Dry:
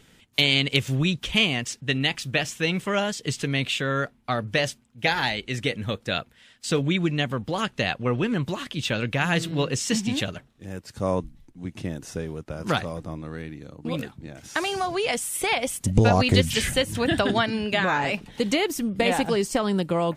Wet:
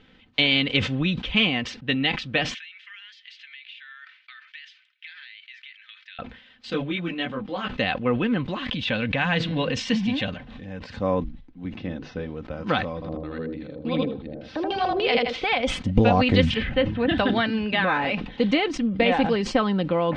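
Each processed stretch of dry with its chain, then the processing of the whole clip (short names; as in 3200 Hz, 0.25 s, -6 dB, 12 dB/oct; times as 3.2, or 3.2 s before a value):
2.54–6.19 steep high-pass 1700 Hz + air absorption 120 m + compressor 4:1, threshold -42 dBFS
6.7–7.68 bell 93 Hz -14.5 dB 0.79 oct + notches 50/100/150 Hz + detuned doubles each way 10 cents
8.62–11.01 bell 360 Hz -12.5 dB 0.32 oct + notch 1300 Hz, Q 11 + backwards sustainer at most 40 dB/s
11.75–12.3 steep low-pass 5900 Hz + notches 50/100/150/200/250/300/350/400/450/500 Hz
12.94–15.44 LFO low-pass square 3.4 Hz 500–4600 Hz + feedback echo 79 ms, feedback 17%, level -3 dB + decimation joined by straight lines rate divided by 3×
16.54–17.09 block floating point 7-bit + air absorption 340 m
whole clip: LPF 3800 Hz 24 dB/oct; comb 3.9 ms, depth 44%; sustainer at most 92 dB/s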